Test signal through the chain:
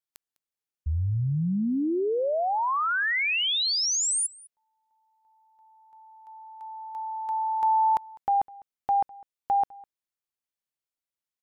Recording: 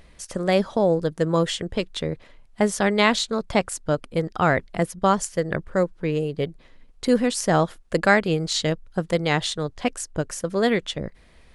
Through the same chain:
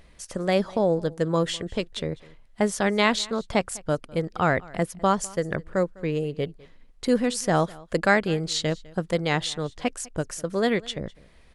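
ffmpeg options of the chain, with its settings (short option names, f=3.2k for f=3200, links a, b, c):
-af "aecho=1:1:203:0.0708,volume=-2.5dB"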